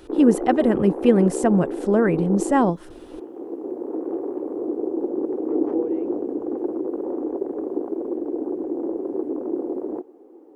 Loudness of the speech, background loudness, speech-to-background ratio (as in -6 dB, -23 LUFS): -20.0 LUFS, -27.5 LUFS, 7.5 dB